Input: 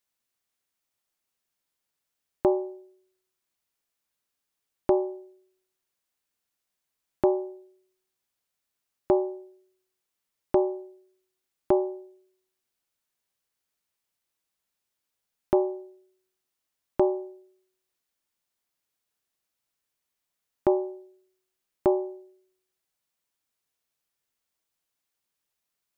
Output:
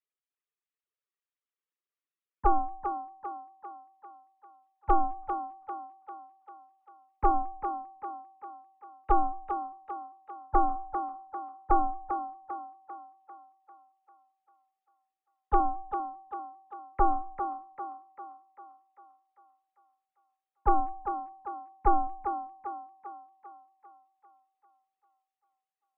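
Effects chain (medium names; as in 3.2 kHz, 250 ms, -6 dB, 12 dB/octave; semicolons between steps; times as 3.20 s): formants replaced by sine waves; dynamic bell 930 Hz, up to +6 dB, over -37 dBFS, Q 0.83; ring modulator 390 Hz; feedback comb 860 Hz, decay 0.31 s, mix 30%; on a send: thinning echo 396 ms, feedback 55%, high-pass 280 Hz, level -7 dB; on the sum: trim +4 dB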